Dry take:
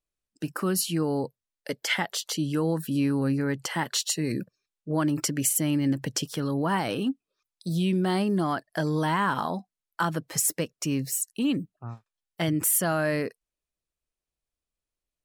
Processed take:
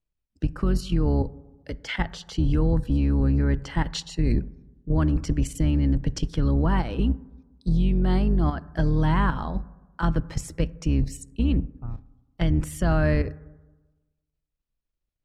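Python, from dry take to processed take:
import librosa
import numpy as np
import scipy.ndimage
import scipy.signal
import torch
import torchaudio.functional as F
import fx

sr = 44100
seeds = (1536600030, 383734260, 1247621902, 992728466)

y = fx.octave_divider(x, sr, octaves=2, level_db=0.0)
y = scipy.signal.sosfilt(scipy.signal.butter(2, 4900.0, 'lowpass', fs=sr, output='sos'), y)
y = fx.low_shelf(y, sr, hz=220.0, db=11.0)
y = fx.level_steps(y, sr, step_db=10)
y = fx.rev_fdn(y, sr, rt60_s=1.2, lf_ratio=1.05, hf_ratio=0.3, size_ms=36.0, drr_db=17.5)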